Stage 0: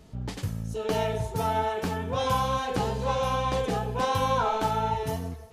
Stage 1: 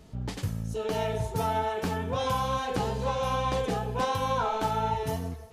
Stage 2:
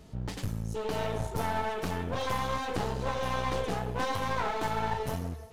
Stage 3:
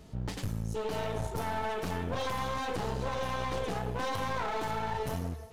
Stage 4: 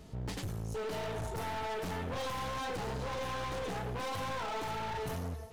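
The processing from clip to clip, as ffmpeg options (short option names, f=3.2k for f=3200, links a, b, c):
-af "alimiter=limit=-18dB:level=0:latency=1:release=358"
-af "aeval=exprs='clip(val(0),-1,0.0126)':c=same"
-af "alimiter=limit=-23dB:level=0:latency=1:release=24"
-af "asoftclip=type=hard:threshold=-33dB"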